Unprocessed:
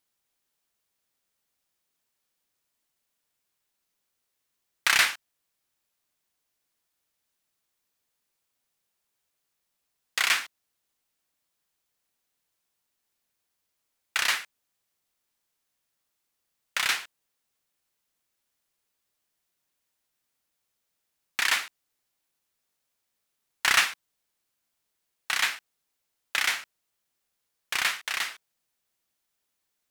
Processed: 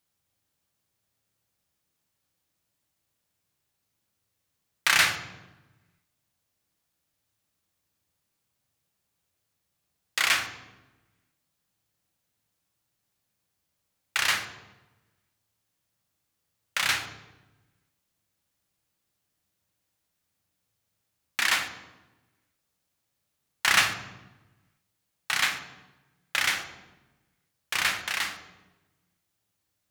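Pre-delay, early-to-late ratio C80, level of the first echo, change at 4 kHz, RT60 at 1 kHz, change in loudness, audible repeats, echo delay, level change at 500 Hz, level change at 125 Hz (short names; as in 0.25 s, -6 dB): 3 ms, 10.5 dB, none, +0.5 dB, 1.0 s, +0.5 dB, none, none, +3.0 dB, n/a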